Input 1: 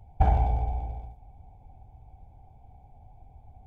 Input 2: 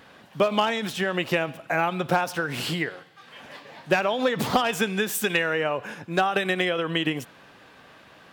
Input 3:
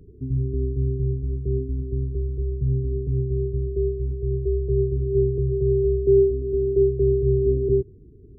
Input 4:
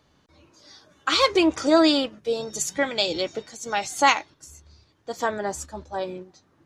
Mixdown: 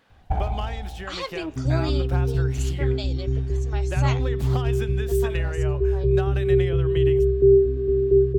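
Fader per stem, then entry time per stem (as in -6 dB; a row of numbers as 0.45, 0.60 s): -3.0, -11.5, +1.5, -12.5 dB; 0.10, 0.00, 1.35, 0.00 s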